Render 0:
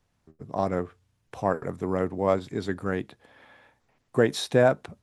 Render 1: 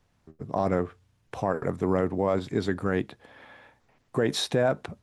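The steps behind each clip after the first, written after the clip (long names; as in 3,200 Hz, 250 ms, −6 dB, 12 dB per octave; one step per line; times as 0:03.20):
high-shelf EQ 6,900 Hz −5 dB
brickwall limiter −18 dBFS, peak gain reduction 10 dB
level +4 dB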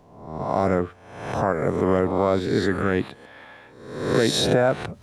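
peak hold with a rise ahead of every peak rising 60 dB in 0.84 s
reversed playback
upward compression, threshold −46 dBFS
reversed playback
level +3 dB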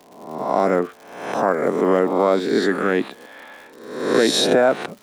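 high-pass filter 210 Hz 24 dB per octave
surface crackle 160 per second −39 dBFS
level +4 dB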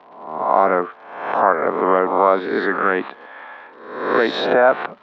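low-pass filter 3,800 Hz 24 dB per octave
parametric band 1,100 Hz +15 dB 2.1 octaves
level −7 dB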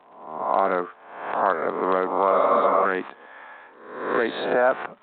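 healed spectral selection 0:02.34–0:02.83, 280–2,300 Hz before
level −6 dB
G.726 40 kbit/s 8,000 Hz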